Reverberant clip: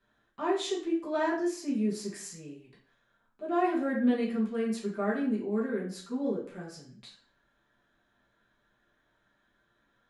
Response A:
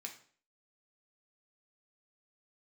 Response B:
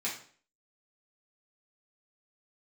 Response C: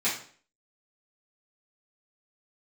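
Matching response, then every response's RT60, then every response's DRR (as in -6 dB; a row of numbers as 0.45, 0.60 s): B; 0.50, 0.50, 0.50 s; 1.5, -6.5, -11.0 dB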